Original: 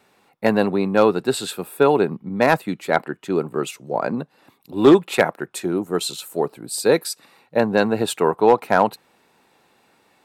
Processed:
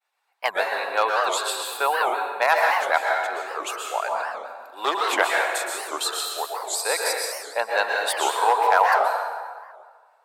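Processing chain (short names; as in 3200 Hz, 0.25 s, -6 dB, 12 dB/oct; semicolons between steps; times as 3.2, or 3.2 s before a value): HPF 690 Hz 24 dB/oct; expander -51 dBFS; reverb removal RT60 0.6 s; 5.48–5.91 doubler 34 ms -3.5 dB; reverb RT60 1.7 s, pre-delay 0.108 s, DRR -1.5 dB; record warp 78 rpm, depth 250 cents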